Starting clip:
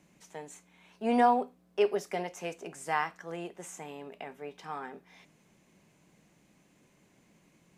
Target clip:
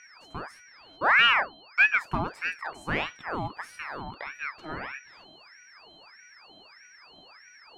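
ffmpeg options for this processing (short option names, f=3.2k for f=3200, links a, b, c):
-filter_complex "[0:a]aeval=exprs='val(0)+0.00562*sin(2*PI*3600*n/s)':c=same,tiltshelf=f=940:g=9.5,asplit=2[a][b];[b]asoftclip=type=hard:threshold=-21.5dB,volume=-5dB[c];[a][c]amix=inputs=2:normalize=0,aeval=exprs='val(0)*sin(2*PI*1300*n/s+1300*0.65/1.6*sin(2*PI*1.6*n/s))':c=same"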